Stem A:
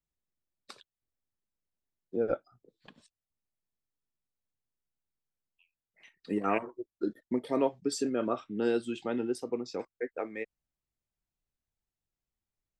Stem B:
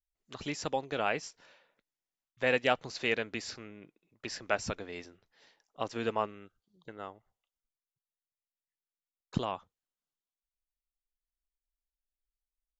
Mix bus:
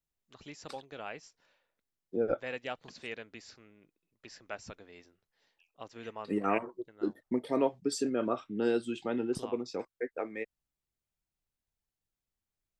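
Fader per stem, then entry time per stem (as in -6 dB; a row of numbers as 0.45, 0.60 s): -0.5, -11.0 dB; 0.00, 0.00 s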